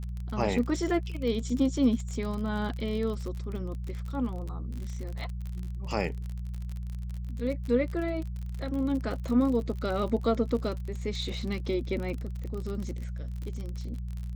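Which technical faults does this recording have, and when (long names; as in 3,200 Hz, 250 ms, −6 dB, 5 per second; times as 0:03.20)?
surface crackle 44 per second −34 dBFS
mains hum 60 Hz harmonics 3 −35 dBFS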